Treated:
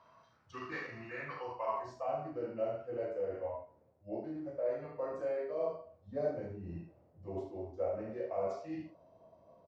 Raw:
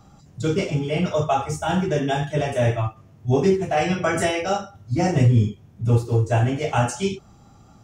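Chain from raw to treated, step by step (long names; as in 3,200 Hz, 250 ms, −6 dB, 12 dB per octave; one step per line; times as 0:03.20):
reversed playback
downward compressor, threshold −25 dBFS, peak gain reduction 12.5 dB
reversed playback
ambience of single reflections 28 ms −6.5 dB, 58 ms −7.5 dB
band-pass filter sweep 1,600 Hz → 720 Hz, 0:01.13–0:01.96
speech leveller within 4 dB 0.5 s
speed change −19%
level −3 dB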